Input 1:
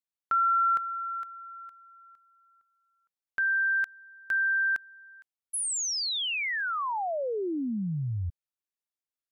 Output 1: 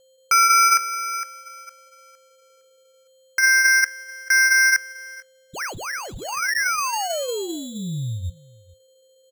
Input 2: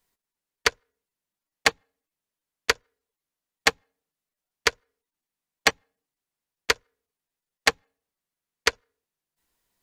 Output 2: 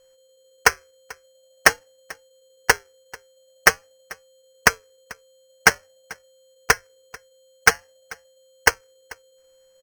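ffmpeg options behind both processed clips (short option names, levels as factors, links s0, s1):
-filter_complex "[0:a]aeval=exprs='val(0)+0.00251*sin(2*PI*4200*n/s)':c=same,flanger=delay=4.5:depth=2.4:regen=-83:speed=0.47:shape=sinusoidal,asplit=2[s0][s1];[s1]adynamicsmooth=sensitivity=4.5:basefreq=1300,volume=1.26[s2];[s0][s2]amix=inputs=2:normalize=0,acrusher=samples=12:mix=1:aa=0.000001,equalizer=f=250:t=o:w=0.67:g=-9,equalizer=f=1600:t=o:w=0.67:g=7,equalizer=f=6300:t=o:w=0.67:g=10,asoftclip=type=hard:threshold=0.473,asplit=2[s3][s4];[s4]aecho=0:1:440:0.0708[s5];[s3][s5]amix=inputs=2:normalize=0,volume=1.33"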